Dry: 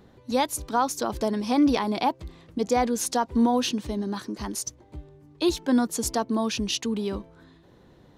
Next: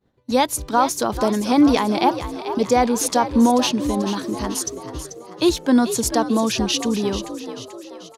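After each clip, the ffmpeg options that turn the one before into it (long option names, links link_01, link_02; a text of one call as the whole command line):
ffmpeg -i in.wav -filter_complex "[0:a]agate=range=-33dB:threshold=-41dB:ratio=3:detection=peak,asplit=2[link_01][link_02];[link_02]asplit=6[link_03][link_04][link_05][link_06][link_07][link_08];[link_03]adelay=438,afreqshift=58,volume=-11dB[link_09];[link_04]adelay=876,afreqshift=116,volume=-16.7dB[link_10];[link_05]adelay=1314,afreqshift=174,volume=-22.4dB[link_11];[link_06]adelay=1752,afreqshift=232,volume=-28dB[link_12];[link_07]adelay=2190,afreqshift=290,volume=-33.7dB[link_13];[link_08]adelay=2628,afreqshift=348,volume=-39.4dB[link_14];[link_09][link_10][link_11][link_12][link_13][link_14]amix=inputs=6:normalize=0[link_15];[link_01][link_15]amix=inputs=2:normalize=0,volume=6dB" out.wav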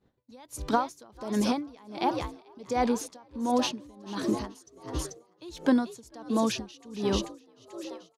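ffmpeg -i in.wav -af "highshelf=frequency=11000:gain=-8.5,acompressor=threshold=-19dB:ratio=6,aeval=exprs='val(0)*pow(10,-28*(0.5-0.5*cos(2*PI*1.4*n/s))/20)':channel_layout=same" out.wav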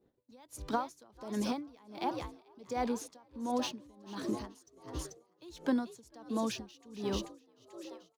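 ffmpeg -i in.wav -filter_complex "[0:a]acrossover=split=330|470|2000[link_01][link_02][link_03][link_04];[link_02]acompressor=mode=upward:threshold=-56dB:ratio=2.5[link_05];[link_04]acrusher=bits=4:mode=log:mix=0:aa=0.000001[link_06];[link_01][link_05][link_03][link_06]amix=inputs=4:normalize=0,volume=-7.5dB" out.wav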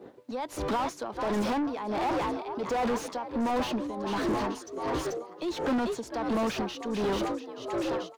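ffmpeg -i in.wav -filter_complex "[0:a]asplit=2[link_01][link_02];[link_02]highpass=frequency=720:poles=1,volume=38dB,asoftclip=type=tanh:threshold=-20dB[link_03];[link_01][link_03]amix=inputs=2:normalize=0,lowpass=frequency=1100:poles=1,volume=-6dB" out.wav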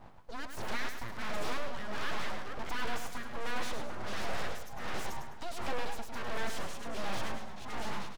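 ffmpeg -i in.wav -af "aeval=exprs='abs(val(0))':channel_layout=same,aecho=1:1:104|208|312|416:0.422|0.148|0.0517|0.0181,volume=-3.5dB" out.wav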